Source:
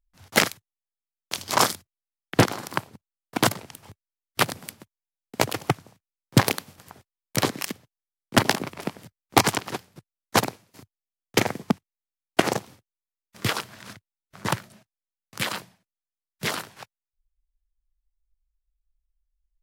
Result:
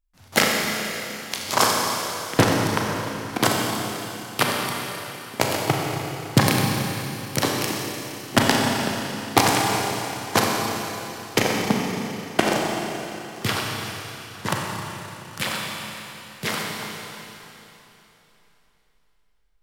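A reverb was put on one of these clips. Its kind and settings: Schroeder reverb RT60 3.3 s, combs from 29 ms, DRR -1.5 dB

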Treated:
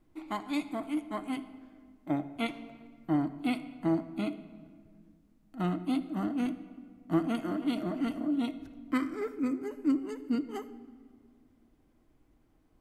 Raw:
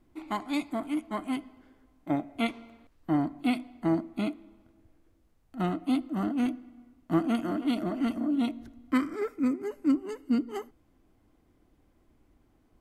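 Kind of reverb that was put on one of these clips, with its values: shoebox room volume 2800 m³, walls mixed, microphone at 0.55 m; gain -3 dB

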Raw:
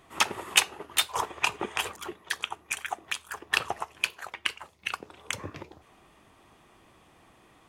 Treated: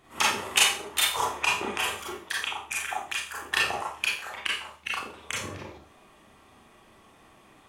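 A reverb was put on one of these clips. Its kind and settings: Schroeder reverb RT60 0.42 s, combs from 28 ms, DRR -4.5 dB; gain -3 dB

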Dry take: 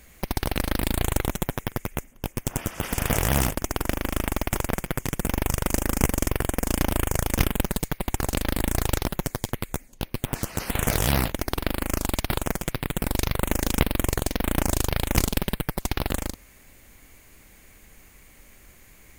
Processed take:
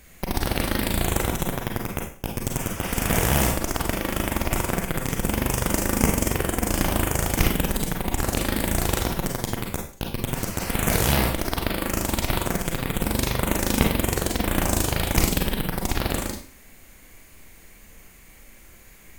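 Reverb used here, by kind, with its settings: Schroeder reverb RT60 0.42 s, combs from 33 ms, DRR 1 dB

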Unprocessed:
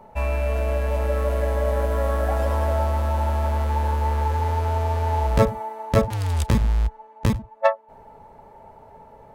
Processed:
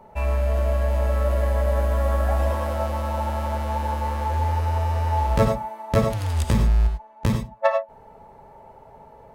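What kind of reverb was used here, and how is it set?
non-linear reverb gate 0.12 s rising, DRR 4.5 dB; gain -1.5 dB

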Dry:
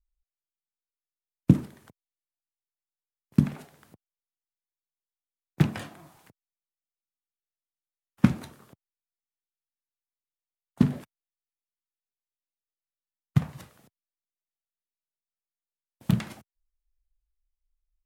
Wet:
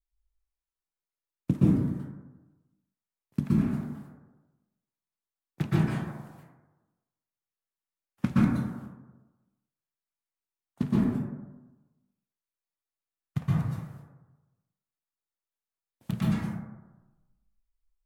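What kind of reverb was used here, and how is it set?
plate-style reverb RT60 1.1 s, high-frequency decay 0.3×, pre-delay 0.11 s, DRR -9 dB; gain -9 dB

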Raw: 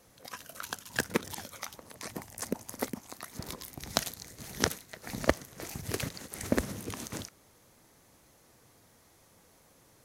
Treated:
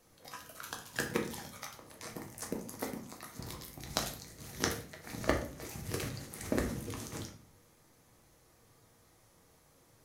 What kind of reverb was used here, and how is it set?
shoebox room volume 59 m³, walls mixed, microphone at 0.61 m; gain -6 dB

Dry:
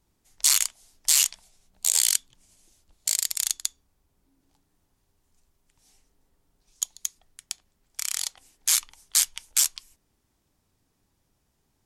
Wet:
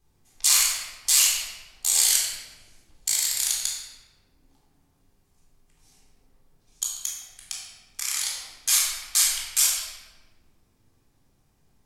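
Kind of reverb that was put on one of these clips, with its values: shoebox room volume 990 m³, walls mixed, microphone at 3.8 m; gain -3.5 dB

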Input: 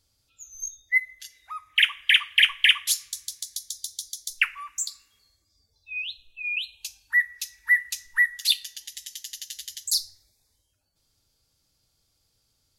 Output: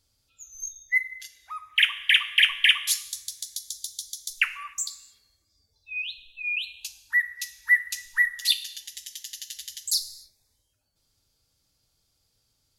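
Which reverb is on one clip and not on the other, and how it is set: non-linear reverb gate 0.32 s falling, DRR 11.5 dB; gain -1 dB

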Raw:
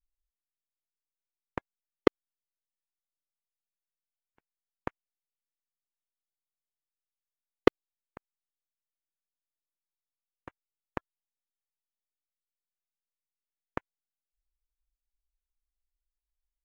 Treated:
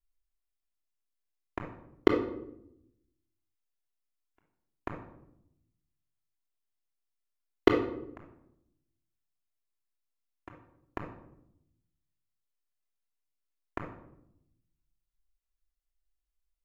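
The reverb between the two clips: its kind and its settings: shoebox room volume 2000 m³, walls furnished, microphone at 3.1 m; gain -3.5 dB

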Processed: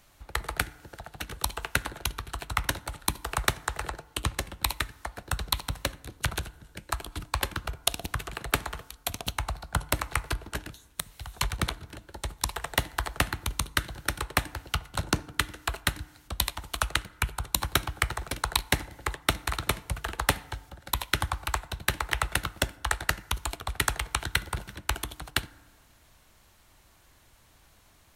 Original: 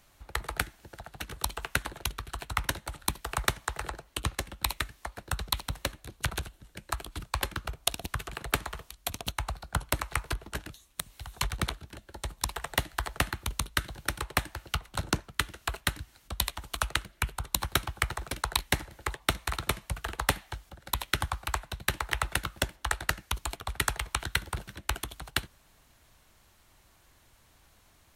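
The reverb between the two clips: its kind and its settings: FDN reverb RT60 1.3 s, low-frequency decay 1.1×, high-frequency decay 0.4×, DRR 19 dB; gain +2 dB

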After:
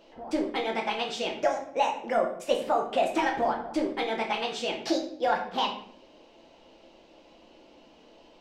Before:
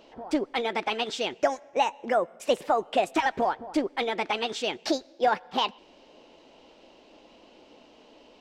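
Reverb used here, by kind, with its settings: shoebox room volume 96 m³, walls mixed, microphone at 0.78 m; gain -4 dB

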